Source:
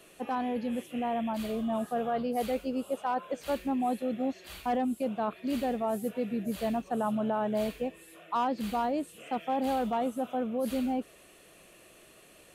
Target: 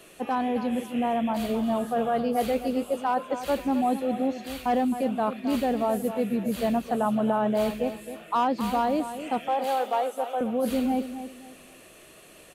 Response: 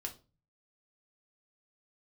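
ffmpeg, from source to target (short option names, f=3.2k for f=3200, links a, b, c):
-filter_complex "[0:a]asettb=1/sr,asplit=3[a][b][c];[a]atrim=end=9.484[d];[b]atrim=start=9.48:end=10.41,asetpts=PTS-STARTPTS,afade=t=in:d=0.004:c=qsin,afade=t=out:st=0.926:d=0.004:c=qsin,highpass=f=410:w=0.5412,highpass=f=410:w=1.3066[e];[c]atrim=start=10.406[f];[d][e]acrossfade=d=0.004:c1=hsin:c2=qsin[g];[g][f]acrossfade=d=0.004:c1=qsin:c2=hsin,aecho=1:1:265|530|795:0.282|0.0817|0.0237,volume=5dB"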